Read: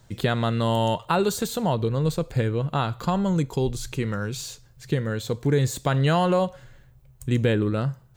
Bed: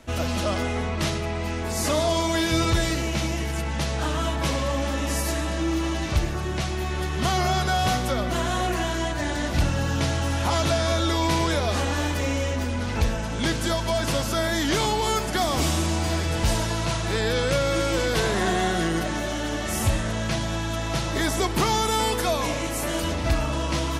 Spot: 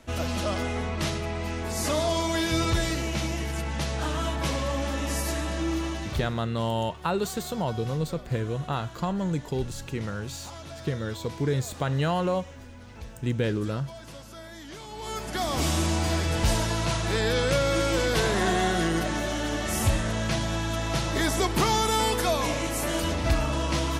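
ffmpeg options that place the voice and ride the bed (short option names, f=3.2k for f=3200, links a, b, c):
-filter_complex "[0:a]adelay=5950,volume=-5dB[a];[1:a]volume=15dB,afade=t=out:st=5.73:d=0.76:silence=0.158489,afade=t=in:st=14.88:d=0.94:silence=0.125893[b];[a][b]amix=inputs=2:normalize=0"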